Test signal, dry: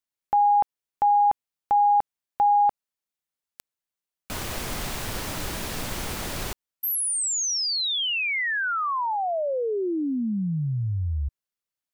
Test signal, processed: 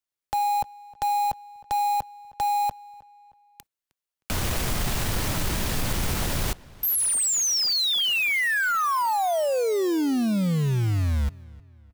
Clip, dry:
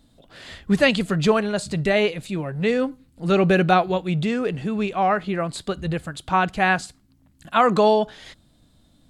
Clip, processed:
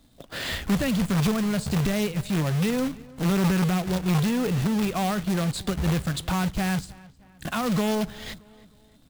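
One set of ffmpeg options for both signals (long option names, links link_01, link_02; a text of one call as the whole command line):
ffmpeg -i in.wav -filter_complex "[0:a]agate=range=-12dB:threshold=-48dB:ratio=16:release=118:detection=rms,acrossover=split=180[link_01][link_02];[link_02]acompressor=threshold=-32dB:ratio=8:attack=0.38:release=675:knee=2.83:detection=peak[link_03];[link_01][link_03]amix=inputs=2:normalize=0,asplit=2[link_04][link_05];[link_05]alimiter=level_in=4.5dB:limit=-24dB:level=0:latency=1:release=23,volume=-4.5dB,volume=2dB[link_06];[link_04][link_06]amix=inputs=2:normalize=0,acompressor=threshold=-22dB:ratio=10:attack=4.5:release=44:knee=6:detection=peak,acrusher=bits=2:mode=log:mix=0:aa=0.000001,asplit=2[link_07][link_08];[link_08]adelay=311,lowpass=frequency=4000:poles=1,volume=-21.5dB,asplit=2[link_09][link_10];[link_10]adelay=311,lowpass=frequency=4000:poles=1,volume=0.44,asplit=2[link_11][link_12];[link_12]adelay=311,lowpass=frequency=4000:poles=1,volume=0.44[link_13];[link_09][link_11][link_13]amix=inputs=3:normalize=0[link_14];[link_07][link_14]amix=inputs=2:normalize=0,volume=3.5dB" out.wav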